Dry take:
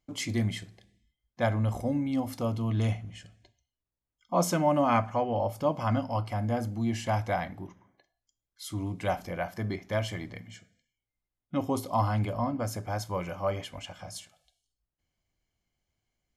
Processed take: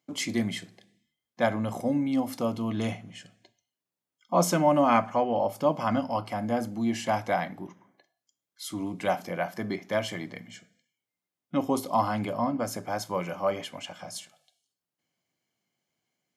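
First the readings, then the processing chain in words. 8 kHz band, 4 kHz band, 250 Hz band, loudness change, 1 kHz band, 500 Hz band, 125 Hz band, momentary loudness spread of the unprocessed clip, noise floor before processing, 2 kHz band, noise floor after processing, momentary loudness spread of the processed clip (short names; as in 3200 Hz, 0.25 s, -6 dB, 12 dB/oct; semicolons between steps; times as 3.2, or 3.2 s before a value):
+3.0 dB, +3.0 dB, +3.0 dB, +2.0 dB, +3.0 dB, +3.0 dB, -6.0 dB, 15 LU, under -85 dBFS, +3.0 dB, under -85 dBFS, 16 LU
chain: HPF 150 Hz 24 dB/oct; gain +3 dB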